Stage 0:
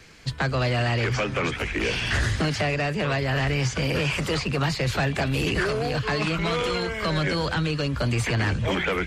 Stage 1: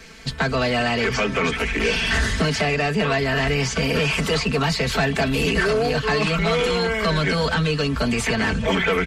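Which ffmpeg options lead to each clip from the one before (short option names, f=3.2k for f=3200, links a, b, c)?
-filter_complex "[0:a]aecho=1:1:4.5:0.75,asplit=2[a][b];[b]alimiter=limit=-21dB:level=0:latency=1,volume=-3dB[c];[a][c]amix=inputs=2:normalize=0"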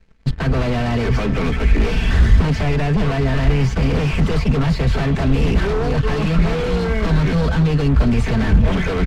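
-af "aeval=exprs='0.119*(abs(mod(val(0)/0.119+3,4)-2)-1)':c=same,aeval=exprs='0.126*(cos(1*acos(clip(val(0)/0.126,-1,1)))-cos(1*PI/2))+0.0178*(cos(7*acos(clip(val(0)/0.126,-1,1)))-cos(7*PI/2))+0.002*(cos(8*acos(clip(val(0)/0.126,-1,1)))-cos(8*PI/2))':c=same,aemphasis=mode=reproduction:type=riaa"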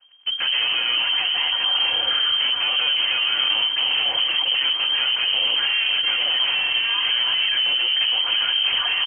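-filter_complex "[0:a]acrossover=split=440|1100[a][b][c];[a]volume=17.5dB,asoftclip=hard,volume=-17.5dB[d];[d][b][c]amix=inputs=3:normalize=0,aecho=1:1:126:0.168,lowpass=f=2.7k:t=q:w=0.5098,lowpass=f=2.7k:t=q:w=0.6013,lowpass=f=2.7k:t=q:w=0.9,lowpass=f=2.7k:t=q:w=2.563,afreqshift=-3200,volume=-2dB"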